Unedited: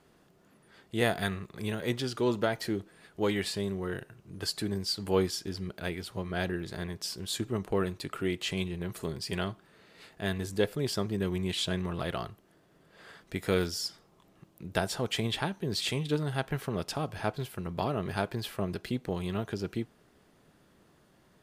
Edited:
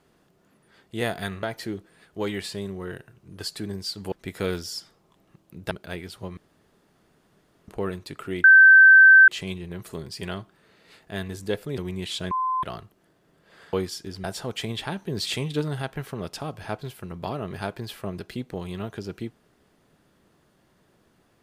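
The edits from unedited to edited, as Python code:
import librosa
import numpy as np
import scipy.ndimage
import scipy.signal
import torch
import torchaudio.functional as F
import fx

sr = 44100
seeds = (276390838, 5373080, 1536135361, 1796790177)

y = fx.edit(x, sr, fx.cut(start_s=1.43, length_s=1.02),
    fx.swap(start_s=5.14, length_s=0.51, other_s=13.2, other_length_s=1.59),
    fx.room_tone_fill(start_s=6.31, length_s=1.31),
    fx.insert_tone(at_s=8.38, length_s=0.84, hz=1550.0, db=-8.0),
    fx.cut(start_s=10.88, length_s=0.37),
    fx.bleep(start_s=11.78, length_s=0.32, hz=1030.0, db=-22.0),
    fx.clip_gain(start_s=15.47, length_s=0.9, db=3.0), tone=tone)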